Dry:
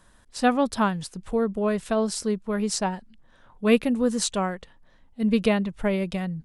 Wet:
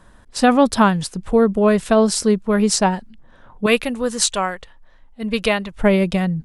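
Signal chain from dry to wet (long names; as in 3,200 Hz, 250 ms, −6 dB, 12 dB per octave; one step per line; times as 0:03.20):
0:03.66–0:05.77: parametric band 190 Hz −12 dB 2.9 octaves
boost into a limiter +12.5 dB
one half of a high-frequency compander decoder only
level −3 dB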